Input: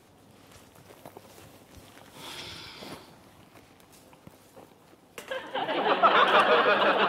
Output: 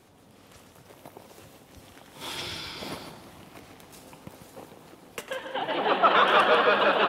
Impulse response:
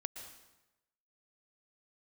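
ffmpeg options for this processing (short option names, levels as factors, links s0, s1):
-filter_complex "[0:a]asettb=1/sr,asplit=3[s0][s1][s2];[s0]atrim=end=2.214[s3];[s1]atrim=start=2.21:end=5.21,asetpts=PTS-STARTPTS,afade=t=in:d=0.004:c=qsin,afade=t=out:st=2.996:d=0.004:c=qsin,acontrast=32[s4];[s2]atrim=start=5.206[s5];[s3][s4]acrossfade=d=0.004:c1=hsin:c2=qsin[s6];[s6][s5]acrossfade=d=0.004:c1=qsin:c2=hsin,aecho=1:1:144:0.398"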